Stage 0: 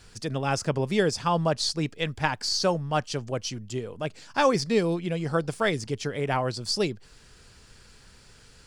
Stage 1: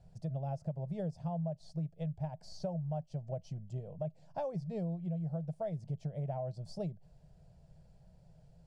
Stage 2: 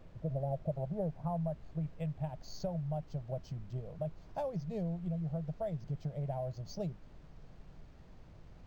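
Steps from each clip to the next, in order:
EQ curve 110 Hz 0 dB, 160 Hz +12 dB, 240 Hz -12 dB, 440 Hz -10 dB, 640 Hz +8 dB, 1200 Hz -21 dB; compressor 10:1, threshold -28 dBFS, peak gain reduction 15.5 dB; gain -6 dB
low-pass sweep 560 Hz -> 4900 Hz, 0.57–2.61; added noise brown -52 dBFS; decimation joined by straight lines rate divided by 4×

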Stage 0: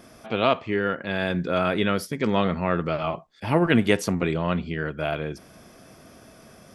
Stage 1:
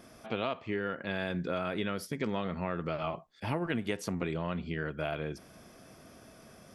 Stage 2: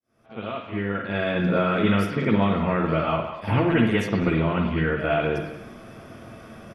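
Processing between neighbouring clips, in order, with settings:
compressor 6:1, threshold -24 dBFS, peak gain reduction 10.5 dB; gain -5 dB
opening faded in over 1.41 s; speakerphone echo 0.2 s, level -10 dB; reverb, pre-delay 49 ms, DRR -11 dB

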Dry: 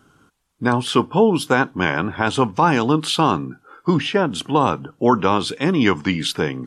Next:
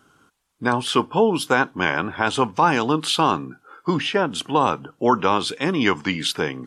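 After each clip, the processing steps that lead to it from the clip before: low shelf 300 Hz -7.5 dB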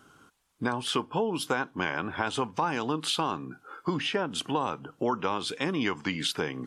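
compressor 3:1, threshold -28 dBFS, peak gain reduction 12.5 dB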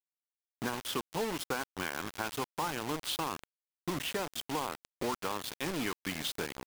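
bit-crush 5-bit; gain -7 dB

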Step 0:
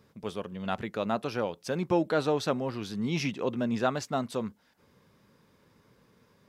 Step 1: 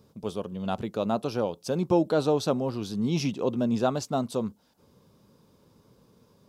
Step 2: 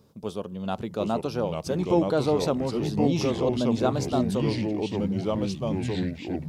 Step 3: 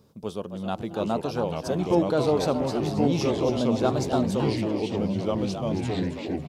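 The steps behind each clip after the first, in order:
bell 1900 Hz -14 dB 0.98 oct; gain +4 dB
echoes that change speed 0.713 s, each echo -3 st, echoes 3
frequency-shifting echo 0.272 s, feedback 33%, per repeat +140 Hz, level -9.5 dB

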